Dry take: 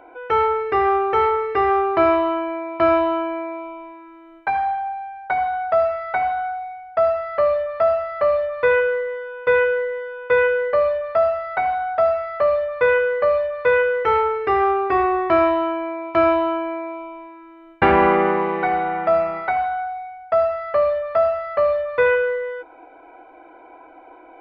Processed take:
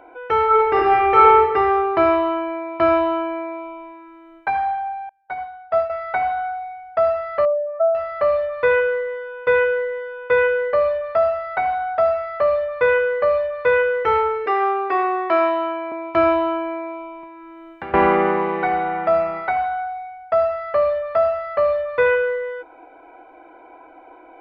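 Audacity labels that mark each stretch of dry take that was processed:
0.460000	1.380000	reverb throw, RT60 1.1 s, DRR -5 dB
5.090000	5.900000	upward expander 2.5:1, over -34 dBFS
7.450000	7.950000	spectral contrast raised exponent 2
14.460000	15.920000	Bessel high-pass 400 Hz, order 4
17.230000	17.940000	three-band squash depth 100%

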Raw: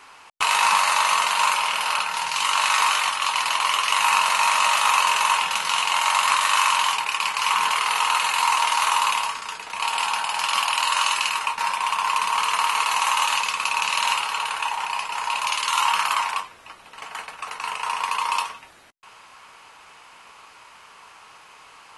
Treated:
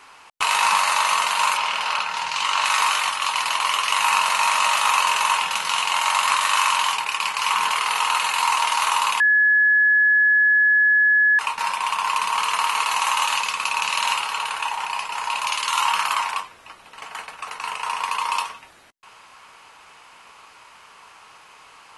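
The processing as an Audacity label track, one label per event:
1.570000	2.650000	LPF 6800 Hz
9.200000	11.390000	bleep 1700 Hz -13 dBFS

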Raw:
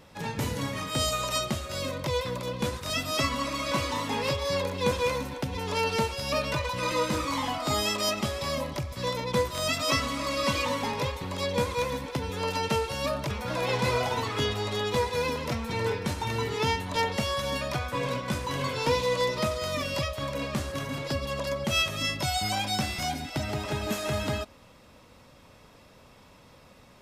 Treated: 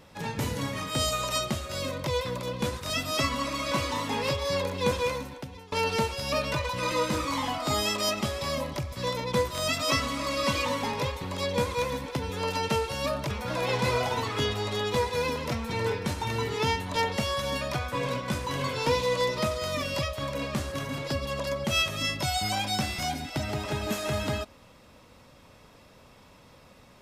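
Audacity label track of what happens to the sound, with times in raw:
4.950000	5.720000	fade out, to -22 dB

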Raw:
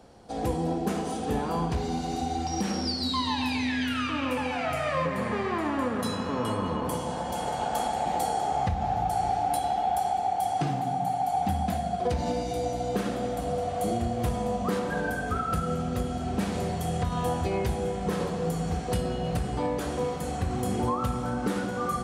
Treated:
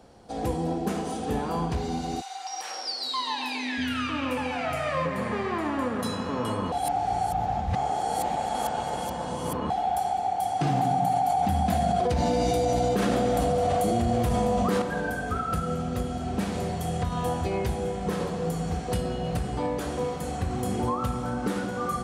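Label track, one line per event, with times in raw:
2.200000	3.770000	HPF 990 Hz -> 250 Hz 24 dB/oct
6.720000	9.700000	reverse
10.610000	14.820000	fast leveller amount 100%

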